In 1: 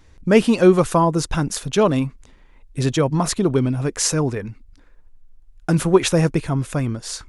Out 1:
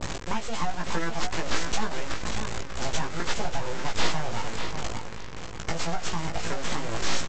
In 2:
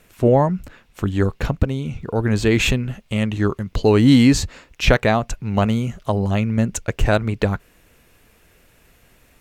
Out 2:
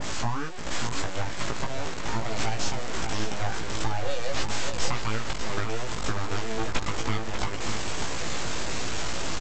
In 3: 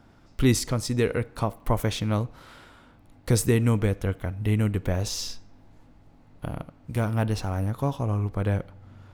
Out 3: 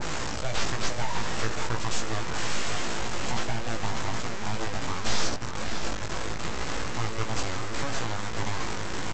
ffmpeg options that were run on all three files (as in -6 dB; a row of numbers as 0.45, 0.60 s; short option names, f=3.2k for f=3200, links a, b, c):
-filter_complex "[0:a]aeval=exprs='val(0)+0.5*0.133*sgn(val(0))':c=same,highpass=f=270:w=0.5412,highpass=f=270:w=1.3066,acompressor=threshold=-20dB:ratio=12,crystalizer=i=2:c=0,aresample=16000,aeval=exprs='abs(val(0))':c=same,aresample=44100,asplit=2[a][b];[b]adelay=18,volume=-4dB[c];[a][c]amix=inputs=2:normalize=0,asplit=2[d][e];[e]adelay=591,lowpass=f=4.7k:p=1,volume=-6.5dB,asplit=2[f][g];[g]adelay=591,lowpass=f=4.7k:p=1,volume=0.26,asplit=2[h][i];[i]adelay=591,lowpass=f=4.7k:p=1,volume=0.26[j];[d][f][h][j]amix=inputs=4:normalize=0,adynamicequalizer=threshold=0.0112:dfrequency=1700:dqfactor=0.7:tfrequency=1700:tqfactor=0.7:attack=5:release=100:ratio=0.375:range=2:mode=cutabove:tftype=highshelf,volume=-4.5dB"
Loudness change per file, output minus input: -12.5, -12.0, -5.0 LU